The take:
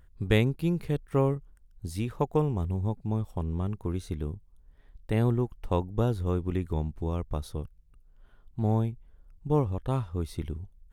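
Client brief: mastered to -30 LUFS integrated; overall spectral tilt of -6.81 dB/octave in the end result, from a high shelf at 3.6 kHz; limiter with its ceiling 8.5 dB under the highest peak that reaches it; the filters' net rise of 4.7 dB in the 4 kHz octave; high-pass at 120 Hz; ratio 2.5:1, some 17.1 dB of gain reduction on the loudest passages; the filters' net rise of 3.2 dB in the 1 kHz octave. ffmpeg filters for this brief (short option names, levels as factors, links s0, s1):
-af "highpass=120,equalizer=f=1000:t=o:g=3.5,highshelf=f=3600:g=3.5,equalizer=f=4000:t=o:g=3.5,acompressor=threshold=0.00501:ratio=2.5,volume=7.08,alimiter=limit=0.141:level=0:latency=1"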